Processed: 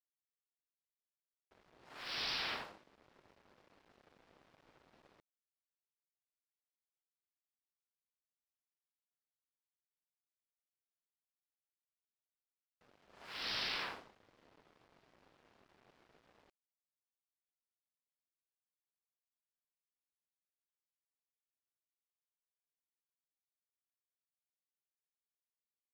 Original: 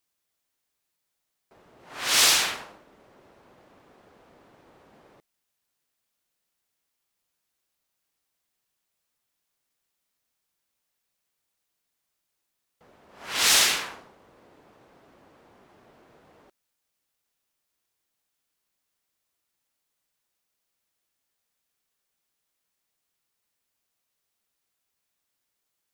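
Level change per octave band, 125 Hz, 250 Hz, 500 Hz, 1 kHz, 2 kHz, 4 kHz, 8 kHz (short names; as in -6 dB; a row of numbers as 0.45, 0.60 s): -11.0, -12.5, -14.0, -14.5, -16.0, -17.0, -34.5 dB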